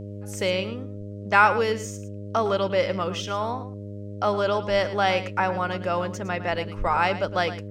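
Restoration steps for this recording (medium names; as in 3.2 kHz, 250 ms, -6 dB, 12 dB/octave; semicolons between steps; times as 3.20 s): de-hum 101.6 Hz, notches 6; inverse comb 109 ms -13.5 dB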